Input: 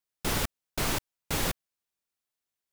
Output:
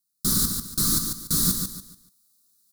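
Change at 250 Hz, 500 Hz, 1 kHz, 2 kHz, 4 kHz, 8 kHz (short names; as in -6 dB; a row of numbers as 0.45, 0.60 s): +8.0, -7.0, -4.5, -9.0, +6.5, +12.0 dB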